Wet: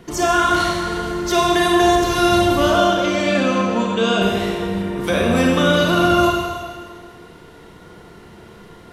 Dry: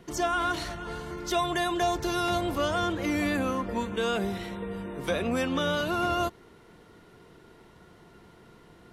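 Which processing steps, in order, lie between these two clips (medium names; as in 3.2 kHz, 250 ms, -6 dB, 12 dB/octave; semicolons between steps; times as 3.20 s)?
2.71–4.22 s: cabinet simulation 190–7500 Hz, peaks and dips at 210 Hz +5 dB, 310 Hz -7 dB, 610 Hz +6 dB, 880 Hz -4 dB, 1.9 kHz -7 dB, 3 kHz +4 dB; Schroeder reverb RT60 1.7 s, combs from 31 ms, DRR -1.5 dB; trim +8 dB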